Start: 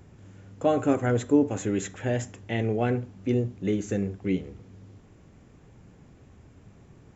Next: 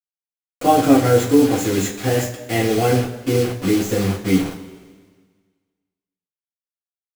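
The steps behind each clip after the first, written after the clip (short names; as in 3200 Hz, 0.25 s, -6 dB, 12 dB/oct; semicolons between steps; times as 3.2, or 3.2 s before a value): bit-crush 6-bit; two-slope reverb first 0.24 s, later 1.6 s, from -18 dB, DRR -6.5 dB; gain +2 dB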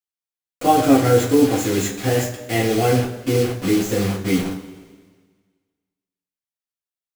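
de-hum 47.43 Hz, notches 35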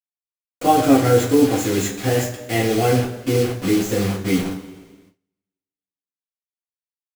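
gate with hold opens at -42 dBFS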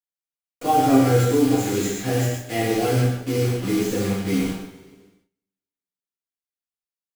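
non-linear reverb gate 0.17 s flat, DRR -0.5 dB; gain -6.5 dB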